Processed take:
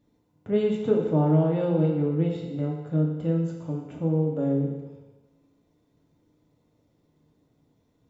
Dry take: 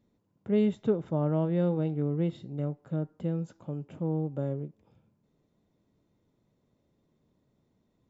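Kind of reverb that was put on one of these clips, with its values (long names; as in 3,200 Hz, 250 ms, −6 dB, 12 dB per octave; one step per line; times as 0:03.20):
feedback delay network reverb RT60 1.2 s, low-frequency decay 0.75×, high-frequency decay 1×, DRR −1.5 dB
level +1.5 dB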